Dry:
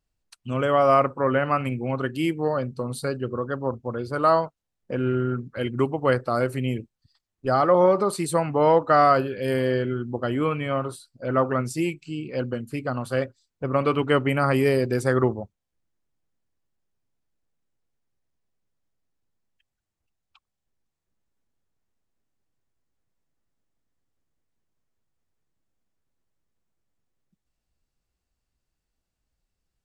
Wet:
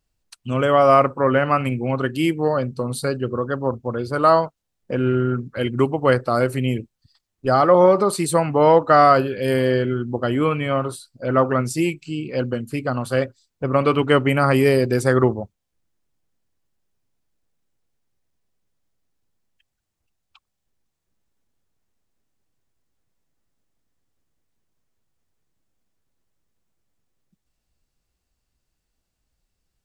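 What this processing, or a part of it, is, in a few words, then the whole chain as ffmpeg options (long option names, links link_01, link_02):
exciter from parts: -filter_complex "[0:a]asplit=2[link_01][link_02];[link_02]highpass=2100,asoftclip=type=tanh:threshold=-25.5dB,volume=-13dB[link_03];[link_01][link_03]amix=inputs=2:normalize=0,volume=4.5dB"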